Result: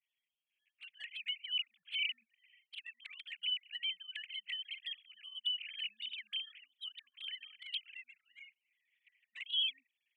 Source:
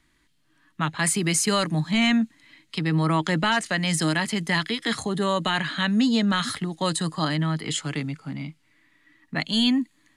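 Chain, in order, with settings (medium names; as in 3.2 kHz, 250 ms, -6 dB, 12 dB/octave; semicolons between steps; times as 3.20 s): formants replaced by sine waves; elliptic high-pass 2.4 kHz, stop band 60 dB; touch-sensitive flanger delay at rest 10.1 ms, full sweep at -34 dBFS; level rider gain up to 3.5 dB; trim -5.5 dB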